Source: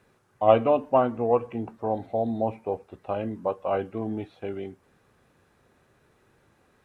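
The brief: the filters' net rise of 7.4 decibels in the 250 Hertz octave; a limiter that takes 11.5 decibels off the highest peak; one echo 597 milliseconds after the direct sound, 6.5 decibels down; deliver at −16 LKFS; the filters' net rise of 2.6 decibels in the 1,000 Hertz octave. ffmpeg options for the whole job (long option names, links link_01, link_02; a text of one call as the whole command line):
ffmpeg -i in.wav -af "equalizer=frequency=250:width_type=o:gain=8.5,equalizer=frequency=1000:width_type=o:gain=3,alimiter=limit=-13.5dB:level=0:latency=1,aecho=1:1:597:0.473,volume=9.5dB" out.wav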